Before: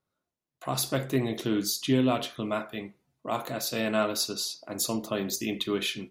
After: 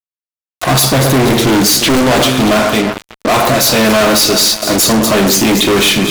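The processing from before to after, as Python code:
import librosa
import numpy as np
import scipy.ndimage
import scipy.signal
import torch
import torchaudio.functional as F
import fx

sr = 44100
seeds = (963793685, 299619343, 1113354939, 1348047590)

y = fx.echo_alternate(x, sr, ms=118, hz=1900.0, feedback_pct=65, wet_db=-11.5)
y = fx.fuzz(y, sr, gain_db=43.0, gate_db=-45.0)
y = fx.doppler_dist(y, sr, depth_ms=0.86, at=(1.79, 2.22))
y = y * 10.0 ** (5.0 / 20.0)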